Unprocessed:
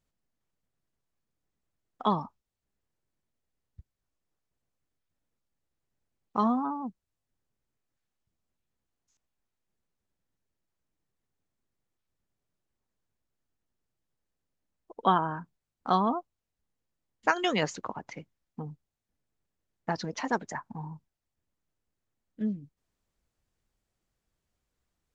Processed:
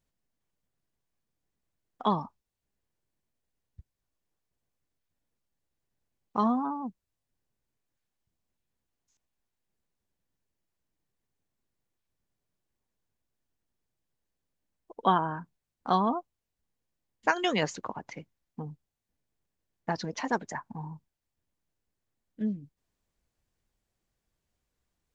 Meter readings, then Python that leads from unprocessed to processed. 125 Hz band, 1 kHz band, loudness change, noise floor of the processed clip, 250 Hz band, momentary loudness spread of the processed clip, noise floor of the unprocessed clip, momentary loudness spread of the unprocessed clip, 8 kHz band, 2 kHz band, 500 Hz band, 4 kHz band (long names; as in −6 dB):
0.0 dB, −0.5 dB, 0.0 dB, −85 dBFS, 0.0 dB, 17 LU, below −85 dBFS, 17 LU, can't be measured, 0.0 dB, 0.0 dB, 0.0 dB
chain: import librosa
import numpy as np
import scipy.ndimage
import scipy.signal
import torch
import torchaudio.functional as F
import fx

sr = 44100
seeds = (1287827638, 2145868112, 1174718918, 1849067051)

y = fx.notch(x, sr, hz=1300.0, q=16.0)